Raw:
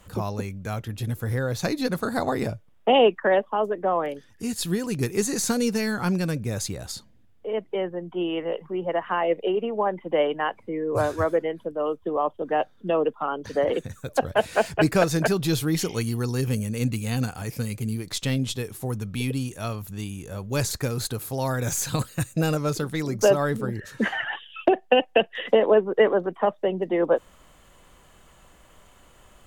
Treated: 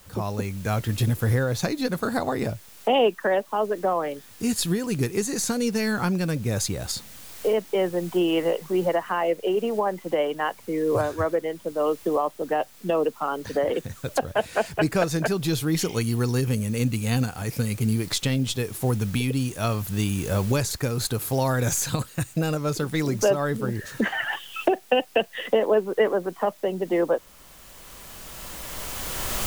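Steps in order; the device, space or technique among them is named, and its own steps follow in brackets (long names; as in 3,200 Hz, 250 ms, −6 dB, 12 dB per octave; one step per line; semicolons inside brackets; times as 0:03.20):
cheap recorder with automatic gain (white noise bed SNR 27 dB; camcorder AGC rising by 11 dB per second)
level −2.5 dB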